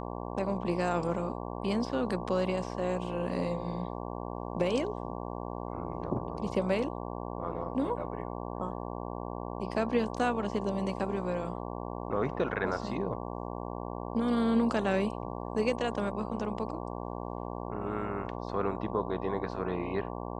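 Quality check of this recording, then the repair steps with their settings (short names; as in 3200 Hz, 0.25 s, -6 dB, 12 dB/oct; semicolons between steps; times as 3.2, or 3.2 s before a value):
buzz 60 Hz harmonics 19 -38 dBFS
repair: de-hum 60 Hz, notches 19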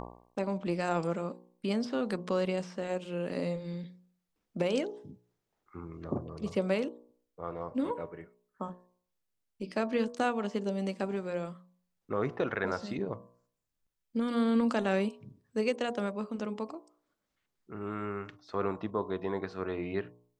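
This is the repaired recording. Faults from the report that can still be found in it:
none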